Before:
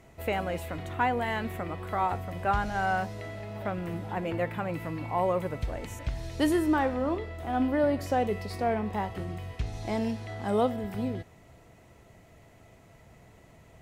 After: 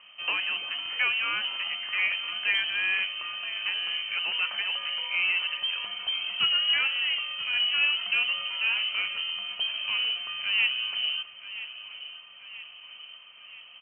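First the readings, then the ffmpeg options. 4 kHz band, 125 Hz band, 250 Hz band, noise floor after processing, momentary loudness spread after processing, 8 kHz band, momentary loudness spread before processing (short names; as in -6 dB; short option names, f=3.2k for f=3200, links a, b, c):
+22.5 dB, under -25 dB, under -25 dB, -49 dBFS, 18 LU, under -30 dB, 10 LU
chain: -filter_complex "[0:a]asplit=2[a][b];[b]aeval=exprs='0.0299*(abs(mod(val(0)/0.0299+3,4)-2)-1)':c=same,volume=-8dB[c];[a][c]amix=inputs=2:normalize=0,aecho=1:1:980|1960|2940|3920|4900|5880:0.2|0.11|0.0604|0.0332|0.0183|0.01,lowpass=f=2.7k:t=q:w=0.5098,lowpass=f=2.7k:t=q:w=0.6013,lowpass=f=2.7k:t=q:w=0.9,lowpass=f=2.7k:t=q:w=2.563,afreqshift=-3200"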